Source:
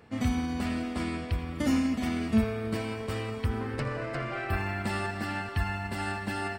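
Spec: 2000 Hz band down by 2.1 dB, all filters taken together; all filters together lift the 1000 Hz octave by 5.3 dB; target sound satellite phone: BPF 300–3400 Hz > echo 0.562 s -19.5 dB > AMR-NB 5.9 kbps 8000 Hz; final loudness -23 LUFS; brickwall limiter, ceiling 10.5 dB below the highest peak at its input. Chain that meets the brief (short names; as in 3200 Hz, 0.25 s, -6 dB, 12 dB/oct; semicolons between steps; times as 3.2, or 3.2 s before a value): bell 1000 Hz +8.5 dB; bell 2000 Hz -5 dB; limiter -23 dBFS; BPF 300–3400 Hz; echo 0.562 s -19.5 dB; gain +14 dB; AMR-NB 5.9 kbps 8000 Hz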